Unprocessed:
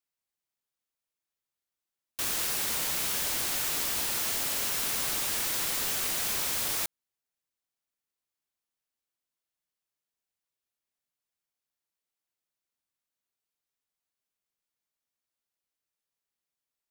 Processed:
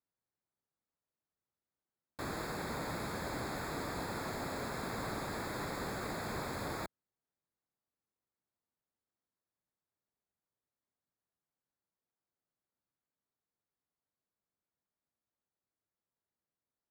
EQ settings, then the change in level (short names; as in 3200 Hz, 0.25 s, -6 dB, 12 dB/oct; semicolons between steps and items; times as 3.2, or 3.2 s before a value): running mean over 15 samples; HPF 83 Hz 6 dB/oct; low shelf 300 Hz +7 dB; +1.0 dB